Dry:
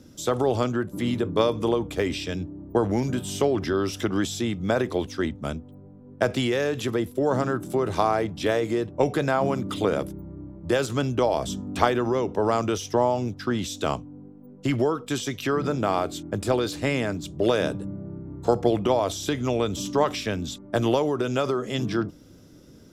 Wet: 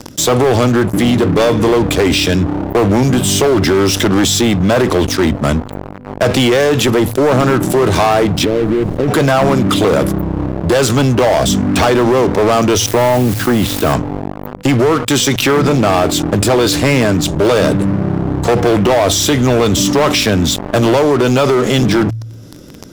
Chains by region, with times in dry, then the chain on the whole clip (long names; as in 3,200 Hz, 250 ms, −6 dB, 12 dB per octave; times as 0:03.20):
0:08.44–0:09.07: inverse Chebyshev low-pass filter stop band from 2,000 Hz, stop band 70 dB + downward compressor, threshold −28 dBFS + background noise brown −51 dBFS
0:12.86–0:13.93: high-frequency loss of the air 290 metres + bit-depth reduction 8 bits, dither triangular
whole clip: leveller curve on the samples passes 5; hum removal 56.24 Hz, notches 2; envelope flattener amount 50%; level −3 dB